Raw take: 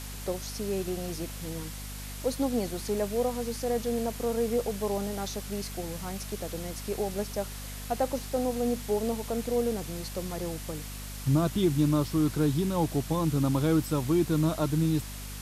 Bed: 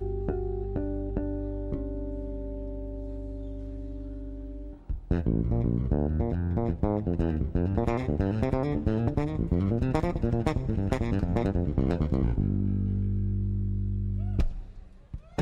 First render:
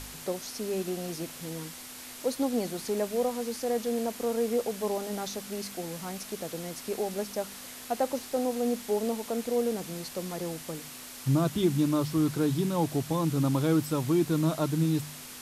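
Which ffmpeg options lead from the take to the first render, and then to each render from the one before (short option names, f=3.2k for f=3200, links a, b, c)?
-af "bandreject=f=50:t=h:w=4,bandreject=f=100:t=h:w=4,bandreject=f=150:t=h:w=4,bandreject=f=200:t=h:w=4"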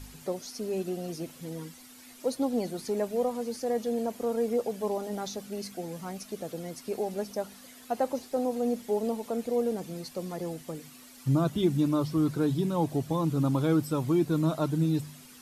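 -af "afftdn=nr=11:nf=-44"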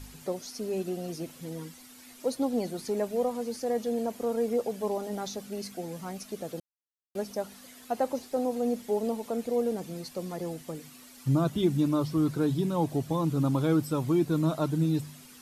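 -filter_complex "[0:a]asplit=3[a][b][c];[a]atrim=end=6.6,asetpts=PTS-STARTPTS,afade=t=out:st=6.596:d=0.004:c=hsin[d];[b]atrim=start=6.6:end=7.15,asetpts=PTS-STARTPTS,volume=0[e];[c]atrim=start=7.15,asetpts=PTS-STARTPTS,afade=t=in:d=0.004:c=hsin[f];[d][e][f]concat=n=3:v=0:a=1"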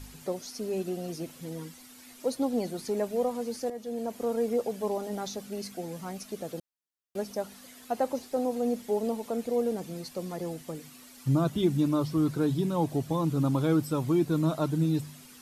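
-filter_complex "[0:a]asplit=2[a][b];[a]atrim=end=3.7,asetpts=PTS-STARTPTS,afade=t=out:st=3.696:d=0.004:c=hsin:silence=0.237137[c];[b]atrim=start=3.7,asetpts=PTS-STARTPTS,afade=t=in:d=0.52:silence=0.237137[d];[c][d]concat=n=2:v=0:a=1"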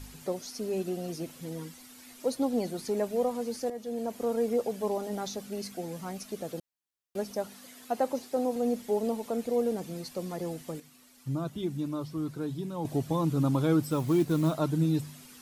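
-filter_complex "[0:a]asettb=1/sr,asplit=3[a][b][c];[a]atrim=end=7.474[d];[b]atrim=start=7.47:end=8.56,asetpts=PTS-STARTPTS,afade=t=in:d=0.004:c=qsin,afade=t=out:st=1.086:d=0.004:c=qsin,highpass=110[e];[c]atrim=start=8.556[f];[d][e]acrossfade=d=0.004:c1=hsin:c2=qsin[g];[g][f]acrossfade=d=0.004:c1=qsin:c2=hsin,asettb=1/sr,asplit=3[h][i][j];[h]atrim=end=13.844[k];[i]atrim=start=13.84:end=14.58,asetpts=PTS-STARTPTS,afade=t=in:d=0.004:c=qsin,afade=t=out:st=0.736:d=0.004:c=qsin,acrusher=bits=6:mode=log:mix=0:aa=0.000001[l];[j]atrim=start=14.576[m];[k][l]acrossfade=d=0.004:c1=hsin:c2=qsin[n];[n][m]acrossfade=d=0.004:c1=qsin:c2=hsin,asplit=3[o][p][q];[o]atrim=end=10.802[r];[p]atrim=start=10.798:end=12.852,asetpts=PTS-STARTPTS,volume=-7.5dB[s];[q]atrim=start=12.848[t];[r][s]acrossfade=d=0.004:c1=hsin:c2=hsin[u];[u][t]acrossfade=d=0.004:c1=hsin:c2=hsin"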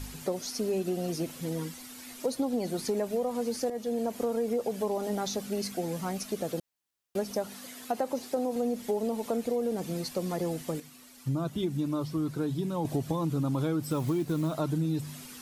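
-filter_complex "[0:a]asplit=2[a][b];[b]alimiter=limit=-22.5dB:level=0:latency=1:release=29,volume=-1.5dB[c];[a][c]amix=inputs=2:normalize=0,acompressor=threshold=-26dB:ratio=6"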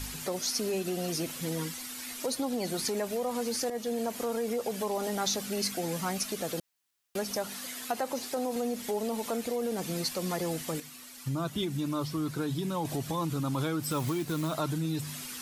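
-filter_complex "[0:a]acrossover=split=1000[a][b];[a]alimiter=level_in=1.5dB:limit=-24dB:level=0:latency=1,volume=-1.5dB[c];[b]acontrast=56[d];[c][d]amix=inputs=2:normalize=0"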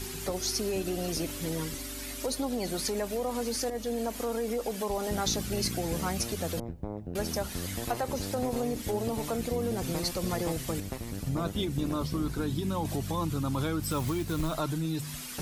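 -filter_complex "[1:a]volume=-10.5dB[a];[0:a][a]amix=inputs=2:normalize=0"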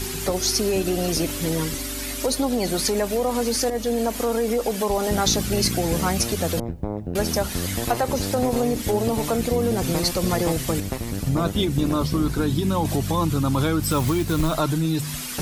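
-af "volume=9dB"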